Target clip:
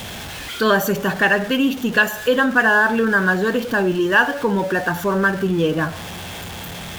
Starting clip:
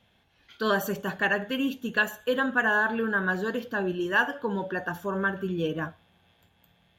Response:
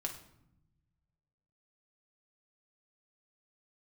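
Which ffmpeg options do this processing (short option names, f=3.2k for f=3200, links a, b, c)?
-filter_complex "[0:a]aeval=exprs='val(0)+0.5*0.0126*sgn(val(0))':c=same,asplit=2[a][b];[b]acompressor=threshold=-32dB:ratio=6,volume=-2dB[c];[a][c]amix=inputs=2:normalize=0,volume=6.5dB"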